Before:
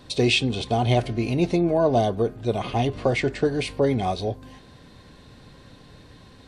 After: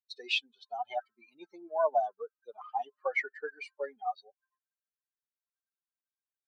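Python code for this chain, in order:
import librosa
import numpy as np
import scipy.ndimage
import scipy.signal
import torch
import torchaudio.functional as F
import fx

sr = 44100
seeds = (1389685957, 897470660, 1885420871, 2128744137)

y = fx.bin_expand(x, sr, power=3.0)
y = fx.rider(y, sr, range_db=10, speed_s=2.0)
y = scipy.signal.sosfilt(scipy.signal.butter(4, 670.0, 'highpass', fs=sr, output='sos'), y)
y = fx.air_absorb(y, sr, metres=190.0)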